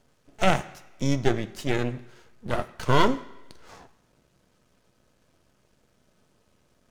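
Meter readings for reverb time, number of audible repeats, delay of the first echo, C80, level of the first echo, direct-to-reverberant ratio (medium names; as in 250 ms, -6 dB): 1.1 s, no echo, no echo, 18.5 dB, no echo, 9.0 dB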